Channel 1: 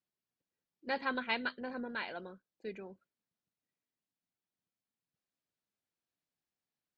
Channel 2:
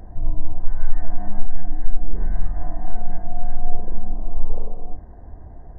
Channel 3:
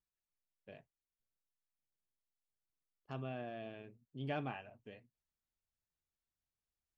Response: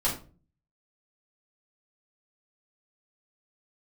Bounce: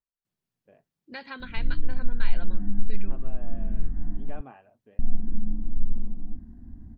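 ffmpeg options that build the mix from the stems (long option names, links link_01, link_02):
-filter_complex "[0:a]equalizer=frequency=130:width=0.74:gain=12,acrossover=split=1200|2400[link_01][link_02][link_03];[link_01]acompressor=threshold=-47dB:ratio=4[link_04];[link_02]acompressor=threshold=-44dB:ratio=4[link_05];[link_03]acompressor=threshold=-46dB:ratio=4[link_06];[link_04][link_05][link_06]amix=inputs=3:normalize=0,adelay=250,volume=2.5dB[link_07];[1:a]firequalizer=gain_entry='entry(140,0);entry(230,13);entry(460,-21);entry(1500,-7)':delay=0.05:min_phase=1,adelay=1400,volume=-5dB,asplit=3[link_08][link_09][link_10];[link_08]atrim=end=4.41,asetpts=PTS-STARTPTS,afade=type=out:start_time=4.406:duration=0.004:curve=hsin[link_11];[link_09]atrim=start=4.41:end=4.99,asetpts=PTS-STARTPTS,volume=0[link_12];[link_10]atrim=start=4.99,asetpts=PTS-STARTPTS,afade=type=in:duration=0.004:curve=hsin[link_13];[link_11][link_12][link_13]concat=n=3:v=0:a=1[link_14];[2:a]lowpass=1500,equalizer=frequency=120:width=1.5:gain=-7,volume=-2dB,asplit=2[link_15][link_16];[link_16]apad=whole_len=321189[link_17];[link_14][link_17]sidechaincompress=threshold=-49dB:ratio=8:attack=21:release=109[link_18];[link_07][link_18][link_15]amix=inputs=3:normalize=0"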